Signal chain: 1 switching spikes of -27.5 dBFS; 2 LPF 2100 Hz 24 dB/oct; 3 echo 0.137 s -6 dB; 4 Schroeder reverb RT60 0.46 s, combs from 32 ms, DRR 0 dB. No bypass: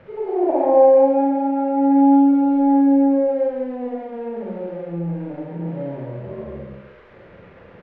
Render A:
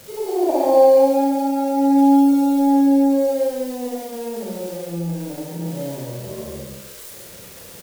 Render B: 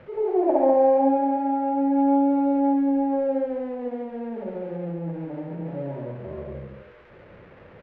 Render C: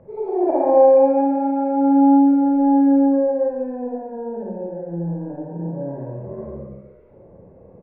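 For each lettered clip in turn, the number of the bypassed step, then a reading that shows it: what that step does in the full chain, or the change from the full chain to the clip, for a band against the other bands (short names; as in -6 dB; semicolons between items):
2, momentary loudness spread change +4 LU; 4, echo-to-direct 2.0 dB to -6.0 dB; 1, distortion -20 dB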